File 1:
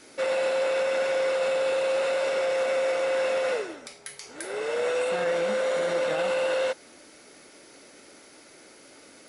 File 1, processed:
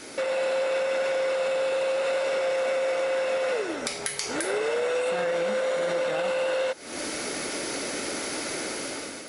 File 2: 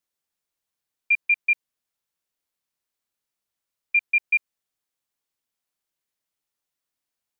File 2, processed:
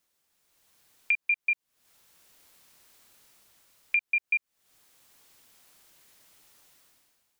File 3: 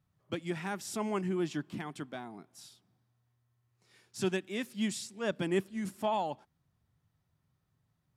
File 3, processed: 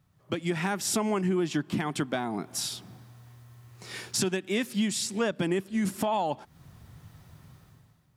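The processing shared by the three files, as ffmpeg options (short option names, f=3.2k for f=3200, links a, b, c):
-af "dynaudnorm=f=130:g=9:m=16dB,alimiter=limit=-12.5dB:level=0:latency=1:release=356,acompressor=threshold=-39dB:ratio=3,volume=9dB"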